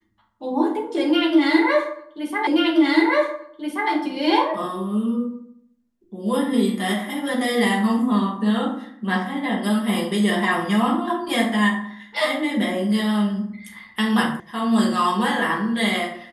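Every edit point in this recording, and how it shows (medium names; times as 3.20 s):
2.47 s: repeat of the last 1.43 s
14.40 s: sound stops dead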